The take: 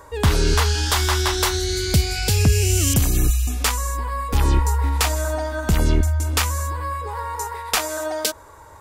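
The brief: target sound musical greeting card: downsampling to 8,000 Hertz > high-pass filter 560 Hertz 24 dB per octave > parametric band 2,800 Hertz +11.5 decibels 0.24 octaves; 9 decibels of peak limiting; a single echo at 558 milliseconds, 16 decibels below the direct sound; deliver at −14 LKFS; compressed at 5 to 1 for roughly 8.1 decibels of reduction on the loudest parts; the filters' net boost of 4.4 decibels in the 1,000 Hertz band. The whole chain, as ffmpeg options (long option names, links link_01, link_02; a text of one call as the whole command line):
ffmpeg -i in.wav -af "equalizer=frequency=1000:width_type=o:gain=5,acompressor=threshold=-21dB:ratio=5,alimiter=limit=-17.5dB:level=0:latency=1,aecho=1:1:558:0.158,aresample=8000,aresample=44100,highpass=frequency=560:width=0.5412,highpass=frequency=560:width=1.3066,equalizer=frequency=2800:width_type=o:width=0.24:gain=11.5,volume=15.5dB" out.wav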